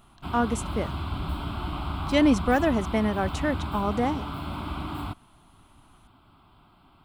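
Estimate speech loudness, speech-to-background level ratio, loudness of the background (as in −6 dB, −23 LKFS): −26.5 LKFS, 7.0 dB, −33.5 LKFS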